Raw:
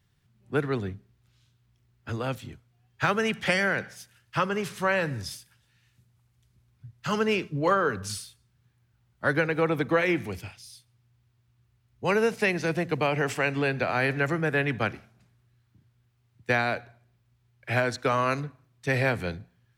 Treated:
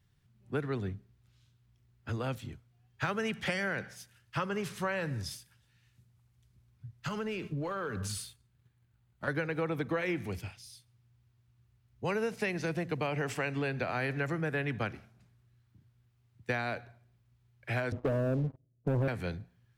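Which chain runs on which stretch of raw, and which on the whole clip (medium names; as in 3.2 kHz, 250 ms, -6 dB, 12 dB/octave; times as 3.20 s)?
7.08–9.28 s: peaking EQ 5.5 kHz -6 dB 0.23 oct + compression 5:1, threshold -33 dBFS + waveshaping leveller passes 1
17.92–19.08 s: steep low-pass 650 Hz 72 dB/octave + waveshaping leveller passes 3
whole clip: bass shelf 190 Hz +4.5 dB; compression 2.5:1, threshold -27 dBFS; trim -4 dB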